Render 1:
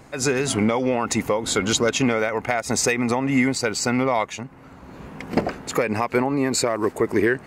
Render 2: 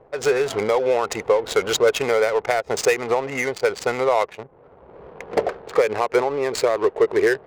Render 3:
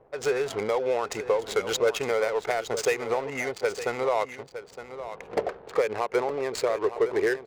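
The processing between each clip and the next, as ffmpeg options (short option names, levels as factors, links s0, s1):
-af "lowshelf=f=340:t=q:w=3:g=-8.5,adynamicsmooth=sensitivity=3:basefreq=590"
-af "aecho=1:1:913:0.251,volume=0.473"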